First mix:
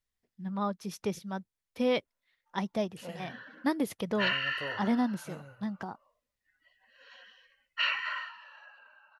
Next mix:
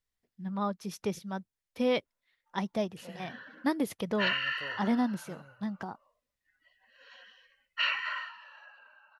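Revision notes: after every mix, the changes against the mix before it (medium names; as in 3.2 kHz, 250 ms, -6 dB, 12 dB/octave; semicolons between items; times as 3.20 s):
second voice -6.0 dB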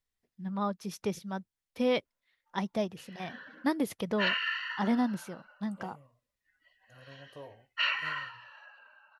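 second voice: entry +2.75 s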